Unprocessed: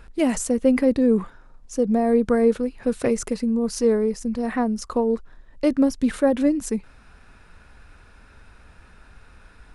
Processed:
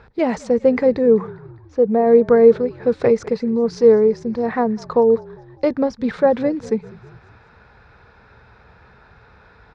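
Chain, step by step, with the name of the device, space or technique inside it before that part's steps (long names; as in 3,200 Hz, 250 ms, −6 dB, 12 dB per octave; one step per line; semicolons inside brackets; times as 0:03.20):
0:00.98–0:02.07: bass and treble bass −3 dB, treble −13 dB
frequency-shifting delay pedal into a guitar cabinet (echo with shifted repeats 200 ms, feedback 59%, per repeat −49 Hz, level −22.5 dB; loudspeaker in its box 76–4,500 Hz, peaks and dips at 120 Hz +5 dB, 280 Hz −8 dB, 450 Hz +6 dB, 850 Hz +5 dB, 2,900 Hz −9 dB)
level +3.5 dB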